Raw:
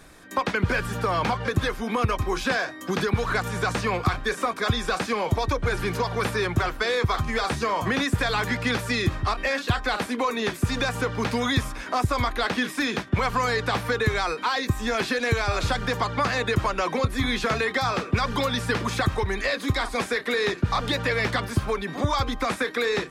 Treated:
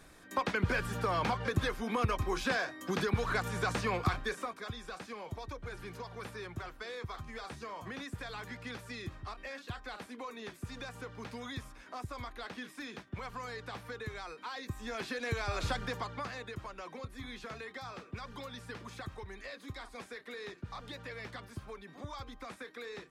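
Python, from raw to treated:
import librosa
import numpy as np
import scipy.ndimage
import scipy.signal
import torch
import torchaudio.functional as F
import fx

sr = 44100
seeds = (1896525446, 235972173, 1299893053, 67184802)

y = fx.gain(x, sr, db=fx.line((4.18, -7.5), (4.69, -18.5), (14.29, -18.5), (15.71, -9.0), (16.53, -20.0)))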